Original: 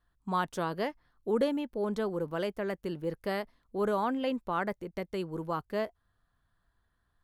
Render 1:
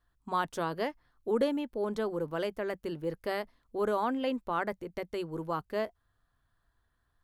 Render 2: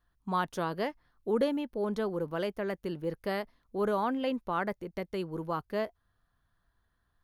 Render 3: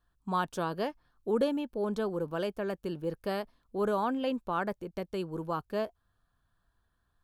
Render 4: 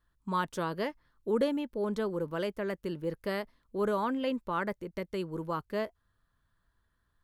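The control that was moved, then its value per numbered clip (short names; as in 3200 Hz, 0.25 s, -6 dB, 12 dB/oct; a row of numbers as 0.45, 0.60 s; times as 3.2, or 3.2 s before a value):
notch, frequency: 190, 7700, 2000, 740 Hz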